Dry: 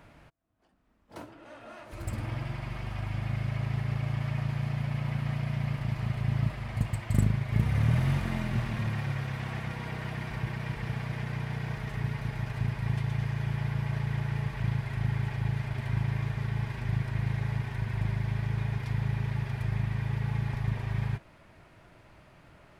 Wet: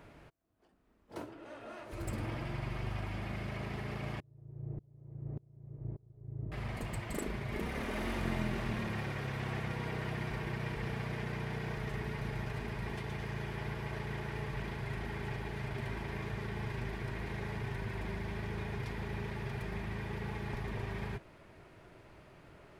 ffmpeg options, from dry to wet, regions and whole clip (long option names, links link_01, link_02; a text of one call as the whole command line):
ffmpeg -i in.wav -filter_complex "[0:a]asettb=1/sr,asplit=3[link_01][link_02][link_03];[link_01]atrim=end=4.204[link_04];[link_02]atrim=start=4.2:end=6.52,asetpts=PTS-STARTPTS,afade=type=in:duration=0.004:curve=qsin,afade=type=out:start_time=2.316:duration=0.004:curve=qsin,lowpass=frequency=340:width_type=q:width=2,equalizer=frequency=220:width=2.5:gain=-14,aeval=exprs='val(0)*pow(10,-32*if(lt(mod(-1.7*n/s,1),2*abs(-1.7)/1000),1-mod(-1.7*n/s,1)/(2*abs(-1.7)/1000),(mod(-1.7*n/s,1)-2*abs(-1.7)/1000)/(1-2*abs(-1.7)/1000))/20)':channel_layout=same[link_05];[link_03]atrim=start=6.516[link_06];[link_04][link_05]acrossfade=duration=0.004:curve1=hsin:curve2=qsin[link_07];[link_07][link_06]acrossfade=duration=0.004:curve1=qsin:curve2=hsin,equalizer=frequency=400:width=2.4:gain=7.5,afftfilt=real='re*lt(hypot(re,im),0.282)':imag='im*lt(hypot(re,im),0.282)':win_size=1024:overlap=0.75,volume=-2dB" out.wav